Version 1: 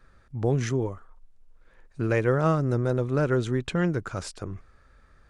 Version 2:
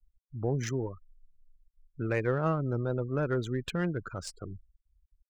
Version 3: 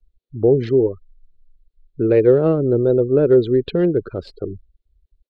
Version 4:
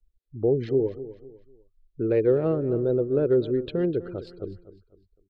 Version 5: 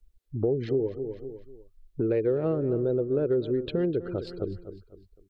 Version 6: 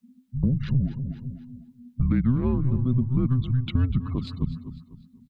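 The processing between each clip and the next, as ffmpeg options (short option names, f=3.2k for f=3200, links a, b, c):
-af "crystalizer=i=2.5:c=0,afftfilt=real='re*gte(hypot(re,im),0.0224)':imag='im*gte(hypot(re,im),0.0224)':win_size=1024:overlap=0.75,adynamicsmooth=sensitivity=3:basefreq=3.9k,volume=-6dB"
-af "firequalizer=gain_entry='entry(170,0);entry(410,13);entry(610,3);entry(970,-9);entry(1800,-8);entry(4200,1);entry(5900,-29)':delay=0.05:min_phase=1,volume=8.5dB"
-af "aecho=1:1:251|502|753:0.178|0.0605|0.0206,volume=-8dB"
-af "acompressor=threshold=-35dB:ratio=2.5,volume=7dB"
-af "afreqshift=-260,aecho=1:1:244|488|732:0.106|0.0371|0.013,volume=3.5dB"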